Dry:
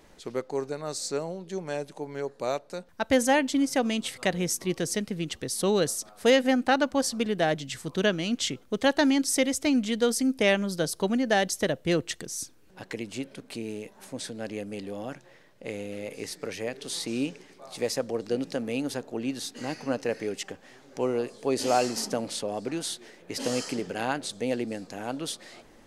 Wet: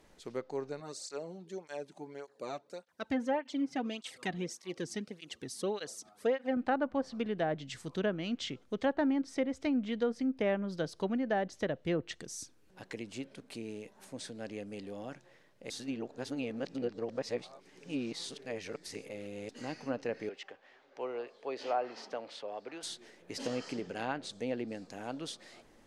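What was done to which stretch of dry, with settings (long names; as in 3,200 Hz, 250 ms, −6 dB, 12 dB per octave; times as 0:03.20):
0:00.80–0:06.57: through-zero flanger with one copy inverted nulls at 1.7 Hz, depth 2.2 ms
0:15.70–0:19.49: reverse
0:20.29–0:22.83: three-way crossover with the lows and the highs turned down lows −18 dB, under 410 Hz, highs −22 dB, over 4,200 Hz
whole clip: treble cut that deepens with the level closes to 1,400 Hz, closed at −20 dBFS; level −7 dB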